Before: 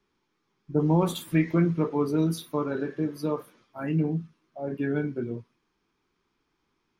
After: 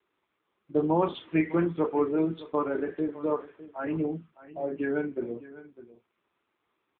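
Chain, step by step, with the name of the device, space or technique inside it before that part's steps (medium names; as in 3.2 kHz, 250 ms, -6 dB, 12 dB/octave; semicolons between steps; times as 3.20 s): satellite phone (band-pass 350–3400 Hz; delay 606 ms -16.5 dB; trim +3.5 dB; AMR-NB 6.7 kbps 8 kHz)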